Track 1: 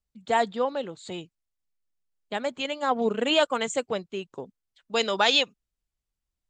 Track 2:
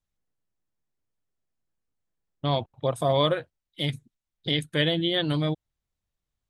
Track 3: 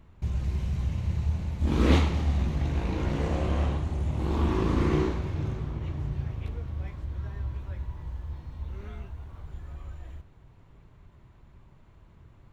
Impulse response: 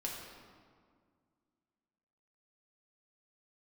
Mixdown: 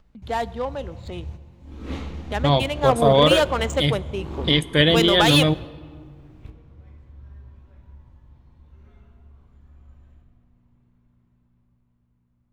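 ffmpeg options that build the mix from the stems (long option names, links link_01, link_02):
-filter_complex "[0:a]acompressor=mode=upward:threshold=-34dB:ratio=2.5,volume=17dB,asoftclip=hard,volume=-17dB,adynamicsmooth=sensitivity=7:basefreq=2200,volume=-2.5dB,asplit=3[link_01][link_02][link_03];[link_02]volume=-17.5dB[link_04];[1:a]volume=0.5dB,asplit=2[link_05][link_06];[link_06]volume=-17.5dB[link_07];[2:a]aeval=exprs='val(0)+0.00447*(sin(2*PI*60*n/s)+sin(2*PI*2*60*n/s)/2+sin(2*PI*3*60*n/s)/3+sin(2*PI*4*60*n/s)/4+sin(2*PI*5*60*n/s)/5)':channel_layout=same,volume=-12.5dB,asplit=2[link_08][link_09];[link_09]volume=-9dB[link_10];[link_03]apad=whole_len=552524[link_11];[link_08][link_11]sidechaingate=range=-33dB:threshold=-56dB:ratio=16:detection=peak[link_12];[3:a]atrim=start_sample=2205[link_13];[link_04][link_07][link_10]amix=inputs=3:normalize=0[link_14];[link_14][link_13]afir=irnorm=-1:irlink=0[link_15];[link_01][link_05][link_12][link_15]amix=inputs=4:normalize=0,dynaudnorm=framelen=210:gausssize=13:maxgain=7.5dB"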